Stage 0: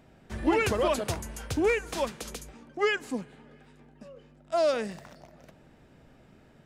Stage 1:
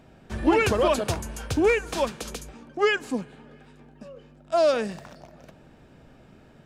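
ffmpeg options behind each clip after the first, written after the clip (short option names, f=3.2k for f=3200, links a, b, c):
-af "highshelf=f=8.9k:g=-4.5,bandreject=f=2k:w=13,volume=4.5dB"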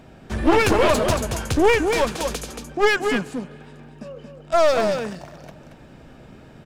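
-af "aecho=1:1:228:0.447,aeval=exprs='clip(val(0),-1,0.0422)':c=same,volume=6.5dB"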